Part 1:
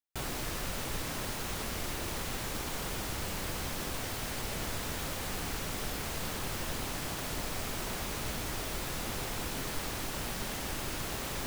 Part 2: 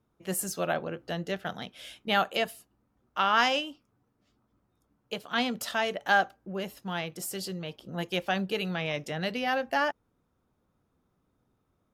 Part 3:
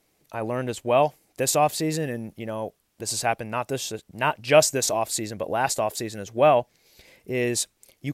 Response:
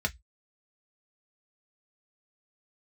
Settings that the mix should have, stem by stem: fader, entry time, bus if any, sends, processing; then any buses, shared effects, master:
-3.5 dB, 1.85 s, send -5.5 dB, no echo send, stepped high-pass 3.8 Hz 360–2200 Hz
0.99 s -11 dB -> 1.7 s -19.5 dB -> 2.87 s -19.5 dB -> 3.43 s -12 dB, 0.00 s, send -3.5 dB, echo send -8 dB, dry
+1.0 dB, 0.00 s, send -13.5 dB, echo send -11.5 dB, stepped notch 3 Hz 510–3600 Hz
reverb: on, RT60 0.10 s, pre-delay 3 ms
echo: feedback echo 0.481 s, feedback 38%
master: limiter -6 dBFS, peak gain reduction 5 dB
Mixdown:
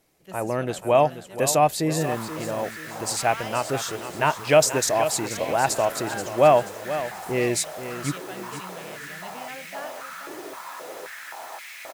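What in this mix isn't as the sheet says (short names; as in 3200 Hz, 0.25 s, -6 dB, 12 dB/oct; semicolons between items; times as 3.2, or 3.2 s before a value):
stem 2: send off; stem 3: missing stepped notch 3 Hz 510–3600 Hz; reverb return -6.5 dB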